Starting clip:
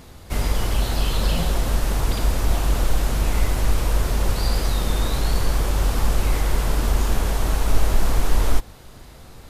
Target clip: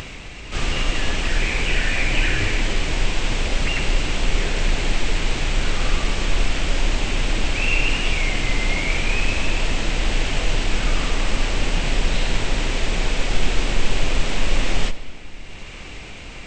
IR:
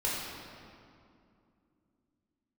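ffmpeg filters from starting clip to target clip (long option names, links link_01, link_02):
-filter_complex "[0:a]equalizer=frequency=4500:width=1.1:gain=11,acompressor=mode=upward:threshold=-27dB:ratio=2.5,asetrate=25442,aresample=44100,asplit=2[link_01][link_02];[1:a]atrim=start_sample=2205,adelay=76[link_03];[link_02][link_03]afir=irnorm=-1:irlink=0,volume=-22dB[link_04];[link_01][link_04]amix=inputs=2:normalize=0"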